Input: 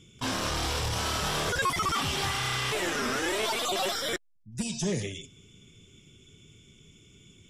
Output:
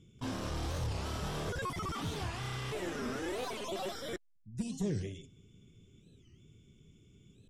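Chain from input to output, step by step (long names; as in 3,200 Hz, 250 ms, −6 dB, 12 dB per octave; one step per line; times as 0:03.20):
tilt shelving filter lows +6 dB, about 670 Hz
wow of a warped record 45 rpm, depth 250 cents
level −8.5 dB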